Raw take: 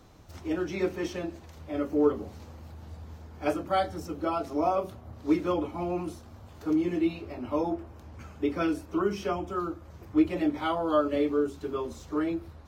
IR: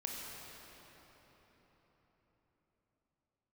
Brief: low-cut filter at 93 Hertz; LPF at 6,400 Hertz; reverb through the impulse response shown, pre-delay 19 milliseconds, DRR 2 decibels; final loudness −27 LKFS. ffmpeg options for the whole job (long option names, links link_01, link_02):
-filter_complex "[0:a]highpass=93,lowpass=6400,asplit=2[link_01][link_02];[1:a]atrim=start_sample=2205,adelay=19[link_03];[link_02][link_03]afir=irnorm=-1:irlink=0,volume=-3dB[link_04];[link_01][link_04]amix=inputs=2:normalize=0,volume=1dB"